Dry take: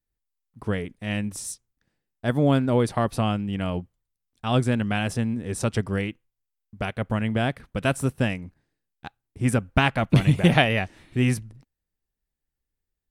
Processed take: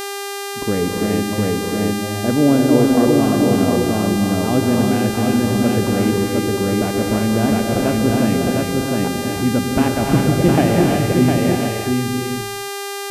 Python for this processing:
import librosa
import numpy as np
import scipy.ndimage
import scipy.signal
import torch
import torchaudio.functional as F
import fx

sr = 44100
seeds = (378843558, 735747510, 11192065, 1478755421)

p1 = x + fx.echo_single(x, sr, ms=709, db=-4.5, dry=0)
p2 = fx.env_lowpass(p1, sr, base_hz=740.0, full_db=-15.5)
p3 = fx.over_compress(p2, sr, threshold_db=-32.0, ratio=-1.0)
p4 = p2 + F.gain(torch.from_numpy(p3), 0.5).numpy()
p5 = fx.curve_eq(p4, sr, hz=(140.0, 290.0, 5900.0), db=(0, 10, -17))
p6 = fx.rev_gated(p5, sr, seeds[0], gate_ms=380, shape='rising', drr_db=1.0)
p7 = fx.dmg_buzz(p6, sr, base_hz=400.0, harmonics=35, level_db=-25.0, tilt_db=-4, odd_only=False)
y = F.gain(torch.from_numpy(p7), -2.0).numpy()